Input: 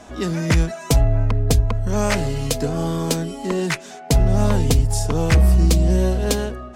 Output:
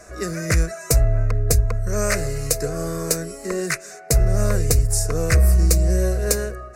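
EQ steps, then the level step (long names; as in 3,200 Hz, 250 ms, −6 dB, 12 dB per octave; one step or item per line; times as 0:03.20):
parametric band 220 Hz +13 dB 0.23 octaves
high-shelf EQ 2,800 Hz +7.5 dB
phaser with its sweep stopped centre 880 Hz, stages 6
0.0 dB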